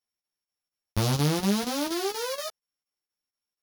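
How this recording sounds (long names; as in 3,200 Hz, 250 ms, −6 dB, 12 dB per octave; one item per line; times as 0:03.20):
a buzz of ramps at a fixed pitch in blocks of 8 samples
chopped level 4.2 Hz, depth 65%, duty 85%
a shimmering, thickened sound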